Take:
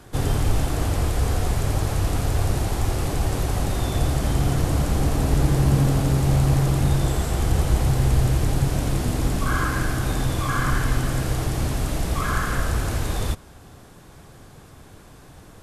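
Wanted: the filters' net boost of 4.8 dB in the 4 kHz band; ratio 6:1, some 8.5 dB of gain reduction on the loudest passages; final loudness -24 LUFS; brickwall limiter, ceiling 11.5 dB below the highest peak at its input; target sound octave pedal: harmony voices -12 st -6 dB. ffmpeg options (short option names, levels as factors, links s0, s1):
-filter_complex "[0:a]equalizer=f=4000:t=o:g=6,acompressor=threshold=0.0794:ratio=6,alimiter=level_in=1.12:limit=0.0631:level=0:latency=1,volume=0.891,asplit=2[s0][s1];[s1]asetrate=22050,aresample=44100,atempo=2,volume=0.501[s2];[s0][s2]amix=inputs=2:normalize=0,volume=3.16"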